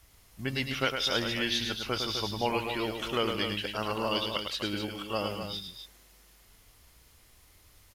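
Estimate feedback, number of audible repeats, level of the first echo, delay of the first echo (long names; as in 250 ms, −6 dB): repeats not evenly spaced, 3, −6.0 dB, 106 ms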